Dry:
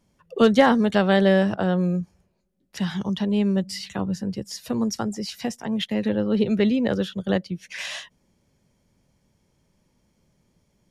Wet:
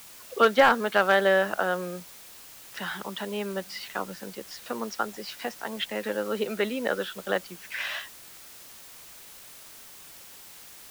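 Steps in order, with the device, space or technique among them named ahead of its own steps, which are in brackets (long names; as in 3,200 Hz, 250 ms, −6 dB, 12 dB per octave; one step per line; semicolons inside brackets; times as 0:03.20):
drive-through speaker (band-pass filter 490–3,600 Hz; parametric band 1,400 Hz +8 dB 0.47 octaves; hard clipping −10.5 dBFS, distortion −19 dB; white noise bed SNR 18 dB)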